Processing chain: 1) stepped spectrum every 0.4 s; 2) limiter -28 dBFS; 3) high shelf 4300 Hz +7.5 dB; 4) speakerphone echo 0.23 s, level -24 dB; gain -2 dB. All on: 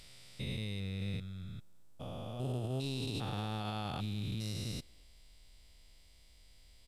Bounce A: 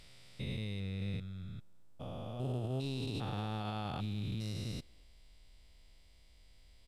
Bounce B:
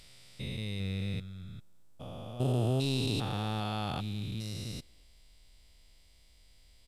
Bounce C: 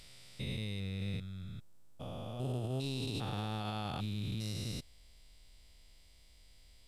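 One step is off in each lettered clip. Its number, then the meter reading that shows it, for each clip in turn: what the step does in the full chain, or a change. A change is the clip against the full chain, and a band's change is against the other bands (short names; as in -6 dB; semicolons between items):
3, 8 kHz band -5.5 dB; 2, mean gain reduction 2.0 dB; 4, echo-to-direct -31.0 dB to none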